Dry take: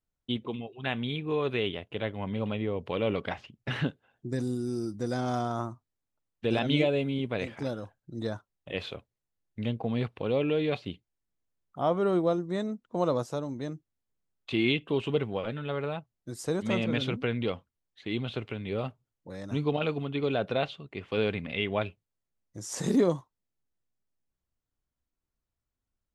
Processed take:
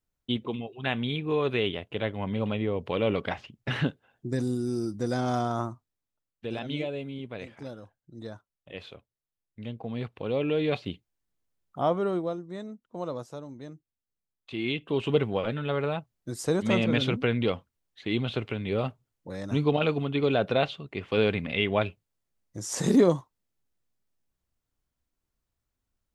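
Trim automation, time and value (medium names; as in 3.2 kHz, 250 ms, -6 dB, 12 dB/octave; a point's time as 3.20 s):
5.65 s +2.5 dB
6.53 s -7 dB
9.60 s -7 dB
10.76 s +2.5 dB
11.81 s +2.5 dB
12.40 s -7 dB
14.51 s -7 dB
15.14 s +4 dB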